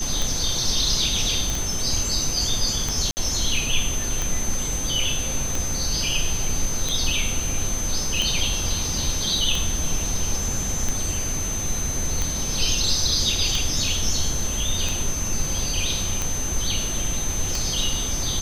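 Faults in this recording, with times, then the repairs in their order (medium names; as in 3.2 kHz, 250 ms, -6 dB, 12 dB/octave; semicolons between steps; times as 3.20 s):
tick 45 rpm
whine 6.2 kHz -27 dBFS
1.50 s: pop
3.11–3.17 s: dropout 59 ms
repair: de-click; band-stop 6.2 kHz, Q 30; interpolate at 3.11 s, 59 ms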